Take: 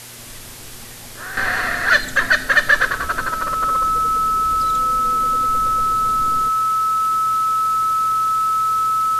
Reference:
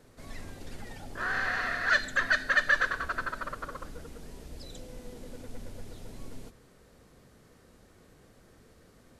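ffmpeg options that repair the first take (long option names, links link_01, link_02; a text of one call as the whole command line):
ffmpeg -i in.wav -af "bandreject=frequency=119.6:width_type=h:width=4,bandreject=frequency=239.2:width_type=h:width=4,bandreject=frequency=358.8:width_type=h:width=4,bandreject=frequency=478.4:width_type=h:width=4,bandreject=frequency=598:width_type=h:width=4,bandreject=frequency=1300:width=30,afwtdn=0.016,asetnsamples=nb_out_samples=441:pad=0,asendcmd='1.37 volume volume -10.5dB',volume=0dB" out.wav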